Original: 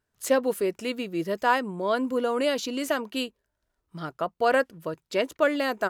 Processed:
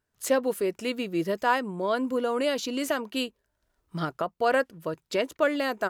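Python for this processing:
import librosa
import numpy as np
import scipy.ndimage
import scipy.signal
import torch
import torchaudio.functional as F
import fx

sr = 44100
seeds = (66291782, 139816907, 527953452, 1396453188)

y = fx.recorder_agc(x, sr, target_db=-17.0, rise_db_per_s=7.5, max_gain_db=30)
y = y * librosa.db_to_amplitude(-1.5)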